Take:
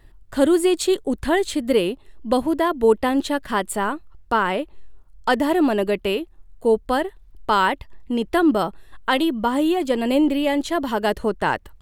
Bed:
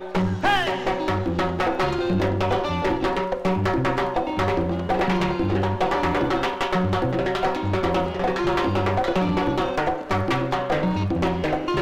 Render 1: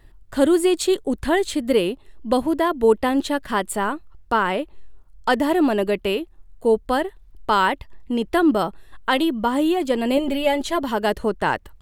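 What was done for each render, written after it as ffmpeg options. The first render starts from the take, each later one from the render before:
ffmpeg -i in.wav -filter_complex "[0:a]asettb=1/sr,asplit=3[link_01][link_02][link_03];[link_01]atrim=end=10.174[link_04];[link_02]atrim=start=10.17:end=10.83,asetpts=PTS-STARTPTS,afade=type=in:duration=0.004:curve=qsin,afade=type=out:start_time=0.656:duration=0.004:curve=qsin,aecho=1:1:4.9:0.68,atrim=end_sample=29106[link_05];[link_03]atrim=start=10.826[link_06];[link_04][link_05]acrossfade=duration=0.004:curve1=hsin:curve2=qsin[link_07];[link_07][link_06]acrossfade=duration=0.004:curve1=qsin:curve2=hsin" out.wav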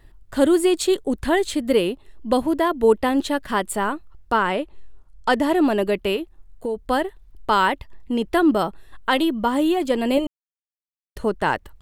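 ffmpeg -i in.wav -filter_complex "[0:a]asettb=1/sr,asplit=3[link_01][link_02][link_03];[link_01]atrim=end=4.374[link_04];[link_02]atrim=start=4.37:end=5.66,asetpts=PTS-STARTPTS,afade=type=in:duration=0.004:curve=qsin,afade=type=out:start_time=1.286:duration=0.004:curve=qsin,lowpass=12000[link_05];[link_03]atrim=start=5.656[link_06];[link_04][link_05]acrossfade=duration=0.004:curve1=hsin:curve2=qsin[link_07];[link_07][link_06]acrossfade=duration=0.004:curve1=qsin:curve2=hsin,asettb=1/sr,asplit=3[link_08][link_09][link_10];[link_08]atrim=end=6.164[link_11];[link_09]atrim=start=6.16:end=6.79,asetpts=PTS-STARTPTS,afade=type=in:duration=0.004:curve=qsin,afade=type=out:start_time=0.626:duration=0.004:curve=qsin,acompressor=threshold=-22dB:ratio=6:attack=3.2:release=140:knee=1:detection=peak[link_12];[link_10]atrim=start=6.786[link_13];[link_11][link_12]acrossfade=duration=0.004:curve1=hsin:curve2=qsin[link_14];[link_14][link_13]acrossfade=duration=0.004:curve1=qsin:curve2=hsin,asplit=3[link_15][link_16][link_17];[link_15]atrim=end=10.27,asetpts=PTS-STARTPTS,afade=type=out:start_time=10.266:duration=0.004:curve=hsin[link_18];[link_16]atrim=start=10.27:end=11.16,asetpts=PTS-STARTPTS,volume=0[link_19];[link_17]atrim=start=11.16,asetpts=PTS-STARTPTS,afade=type=in:duration=0.004:curve=hsin[link_20];[link_18][link_19][link_20]concat=n=3:v=0:a=1" out.wav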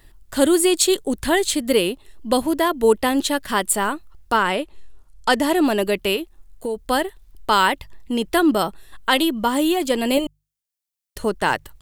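ffmpeg -i in.wav -af "highshelf=frequency=3200:gain=11.5,bandreject=frequency=50:width_type=h:width=6,bandreject=frequency=100:width_type=h:width=6,bandreject=frequency=150:width_type=h:width=6" out.wav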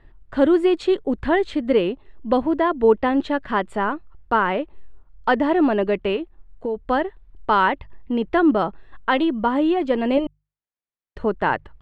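ffmpeg -i in.wav -af "lowpass=2100,aemphasis=mode=reproduction:type=cd" out.wav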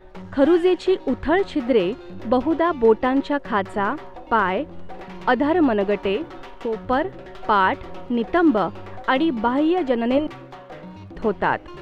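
ffmpeg -i in.wav -i bed.wav -filter_complex "[1:a]volume=-16dB[link_01];[0:a][link_01]amix=inputs=2:normalize=0" out.wav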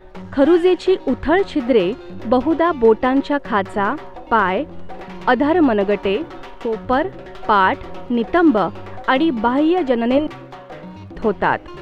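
ffmpeg -i in.wav -af "volume=3.5dB,alimiter=limit=-3dB:level=0:latency=1" out.wav

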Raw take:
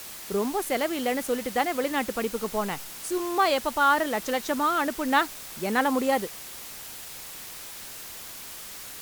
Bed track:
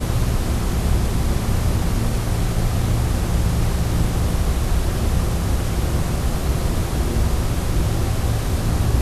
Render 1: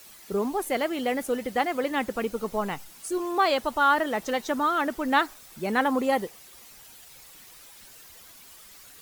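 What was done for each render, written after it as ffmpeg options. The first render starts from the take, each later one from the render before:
ffmpeg -i in.wav -af "afftdn=noise_reduction=11:noise_floor=-41" out.wav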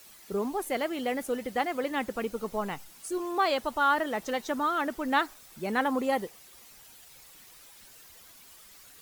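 ffmpeg -i in.wav -af "volume=-3.5dB" out.wav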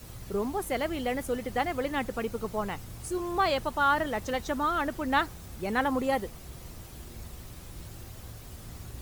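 ffmpeg -i in.wav -i bed.wav -filter_complex "[1:a]volume=-24.5dB[link_01];[0:a][link_01]amix=inputs=2:normalize=0" out.wav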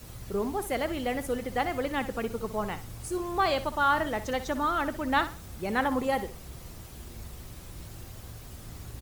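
ffmpeg -i in.wav -af "aecho=1:1:62|124|186:0.224|0.0627|0.0176" out.wav

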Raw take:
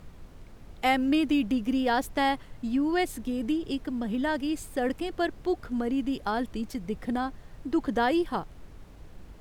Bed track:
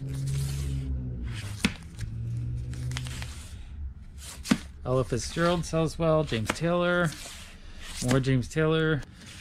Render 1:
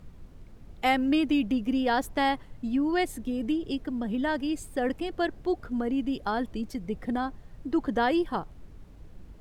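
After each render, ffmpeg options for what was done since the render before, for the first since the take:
ffmpeg -i in.wav -af "afftdn=noise_reduction=6:noise_floor=-49" out.wav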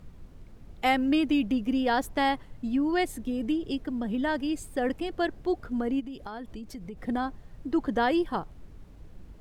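ffmpeg -i in.wav -filter_complex "[0:a]asplit=3[link_01][link_02][link_03];[link_01]afade=type=out:start_time=5.99:duration=0.02[link_04];[link_02]acompressor=threshold=-36dB:ratio=5:attack=3.2:release=140:knee=1:detection=peak,afade=type=in:start_time=5.99:duration=0.02,afade=type=out:start_time=6.97:duration=0.02[link_05];[link_03]afade=type=in:start_time=6.97:duration=0.02[link_06];[link_04][link_05][link_06]amix=inputs=3:normalize=0" out.wav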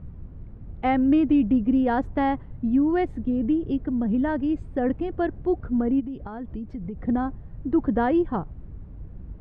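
ffmpeg -i in.wav -af "lowpass=1700,equalizer=frequency=83:width=0.34:gain=12" out.wav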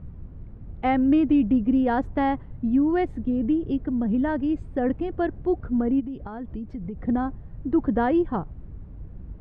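ffmpeg -i in.wav -af anull out.wav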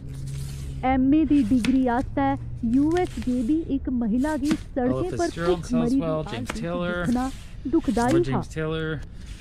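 ffmpeg -i in.wav -i bed.wav -filter_complex "[1:a]volume=-3dB[link_01];[0:a][link_01]amix=inputs=2:normalize=0" out.wav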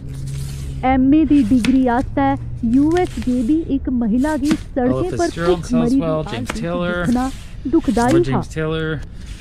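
ffmpeg -i in.wav -af "volume=6.5dB" out.wav

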